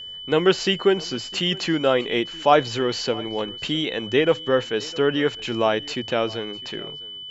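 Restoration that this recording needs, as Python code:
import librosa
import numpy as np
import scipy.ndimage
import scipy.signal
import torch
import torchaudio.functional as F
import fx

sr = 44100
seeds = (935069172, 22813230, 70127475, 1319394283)

y = fx.notch(x, sr, hz=3000.0, q=30.0)
y = fx.fix_echo_inverse(y, sr, delay_ms=655, level_db=-22.0)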